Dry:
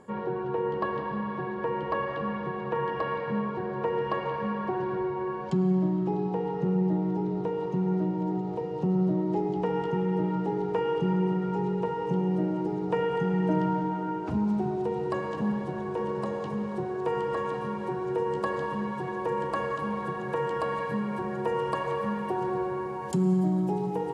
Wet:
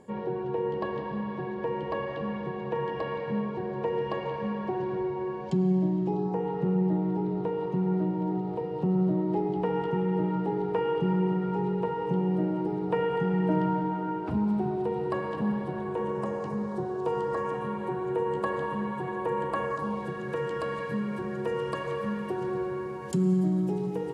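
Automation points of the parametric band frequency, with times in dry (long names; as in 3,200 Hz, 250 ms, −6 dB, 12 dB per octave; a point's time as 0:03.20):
parametric band −10 dB 0.61 octaves
0:06.07 1,300 Hz
0:06.52 6,400 Hz
0:15.77 6,400 Hz
0:17.11 1,900 Hz
0:17.67 5,400 Hz
0:19.60 5,400 Hz
0:20.16 850 Hz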